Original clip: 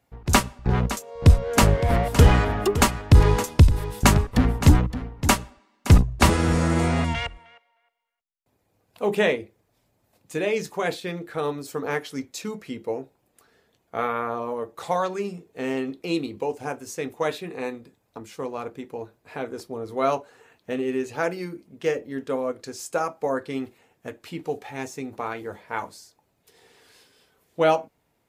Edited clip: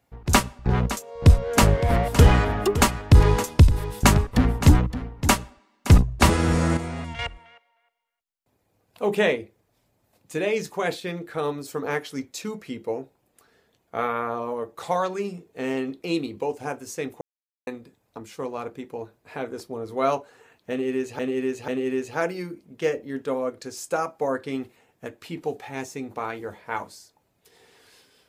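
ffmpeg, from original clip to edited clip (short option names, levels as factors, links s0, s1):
-filter_complex "[0:a]asplit=7[s0][s1][s2][s3][s4][s5][s6];[s0]atrim=end=6.772[s7];[s1]atrim=start=6.768:end=7.192,asetpts=PTS-STARTPTS,volume=0.335[s8];[s2]atrim=start=7.188:end=17.21,asetpts=PTS-STARTPTS,afade=t=out:st=10.018:d=0.004:c=hsin[s9];[s3]atrim=start=17.21:end=17.67,asetpts=PTS-STARTPTS,volume=0[s10];[s4]atrim=start=17.67:end=21.192,asetpts=PTS-STARTPTS,afade=t=in:d=0.004:c=hsin[s11];[s5]atrim=start=20.698:end=21.192[s12];[s6]atrim=start=20.698[s13];[s7][s8]acrossfade=d=0.004:c1=hsin:c2=hsin[s14];[s9][s10][s11]concat=n=3:v=0:a=1[s15];[s14][s15]acrossfade=d=0.004:c1=hsin:c2=hsin[s16];[s16][s12]acrossfade=d=0.004:c1=hsin:c2=hsin[s17];[s17][s13]acrossfade=d=0.004:c1=hsin:c2=hsin"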